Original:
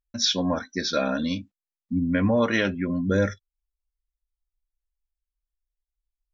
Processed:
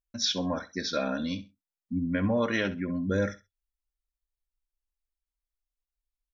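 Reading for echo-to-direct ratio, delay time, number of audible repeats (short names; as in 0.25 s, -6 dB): -15.5 dB, 65 ms, 2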